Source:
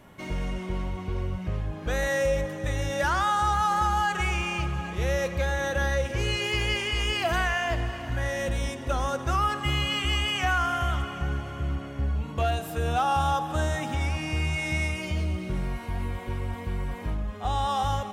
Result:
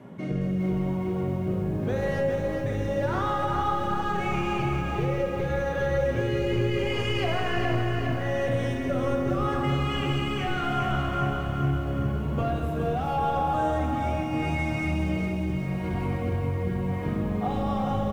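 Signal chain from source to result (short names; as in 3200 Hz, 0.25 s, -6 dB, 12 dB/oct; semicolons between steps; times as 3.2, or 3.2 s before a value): HPF 170 Hz 12 dB/oct; soft clip -23 dBFS, distortion -15 dB; high shelf 3000 Hz -10.5 dB; rotary speaker horn 0.8 Hz; low shelf 480 Hz +11 dB; on a send at -1.5 dB: reverb RT60 1.3 s, pre-delay 4 ms; on the sum: compressor, threshold -28 dBFS, peak gain reduction 10.5 dB; echo 0.161 s -9.5 dB; lo-fi delay 0.412 s, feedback 55%, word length 10-bit, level -5.5 dB; gain +3.5 dB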